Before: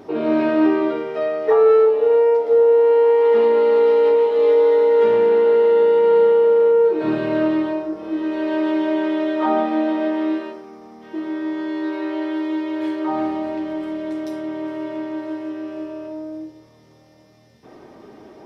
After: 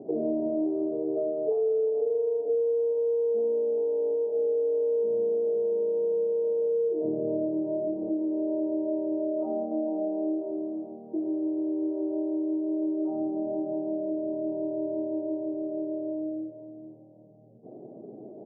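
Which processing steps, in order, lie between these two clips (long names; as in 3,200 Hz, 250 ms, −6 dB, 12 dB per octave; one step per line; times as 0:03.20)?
slap from a distant wall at 75 metres, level −11 dB
downward compressor, threshold −25 dBFS, peak gain reduction 14.5 dB
Chebyshev band-pass filter 120–690 Hz, order 4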